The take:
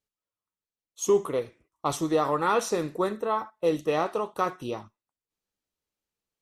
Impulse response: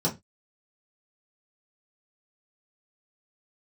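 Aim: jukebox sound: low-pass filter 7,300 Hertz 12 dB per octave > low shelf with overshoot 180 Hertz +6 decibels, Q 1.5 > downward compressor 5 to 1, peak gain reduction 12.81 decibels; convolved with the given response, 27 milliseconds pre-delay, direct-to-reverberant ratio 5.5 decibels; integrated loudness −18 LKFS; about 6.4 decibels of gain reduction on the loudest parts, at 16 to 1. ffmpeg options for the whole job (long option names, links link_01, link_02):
-filter_complex "[0:a]acompressor=threshold=-24dB:ratio=16,asplit=2[link_01][link_02];[1:a]atrim=start_sample=2205,adelay=27[link_03];[link_02][link_03]afir=irnorm=-1:irlink=0,volume=-15dB[link_04];[link_01][link_04]amix=inputs=2:normalize=0,lowpass=7300,lowshelf=frequency=180:width_type=q:width=1.5:gain=6,acompressor=threshold=-32dB:ratio=5,volume=18dB"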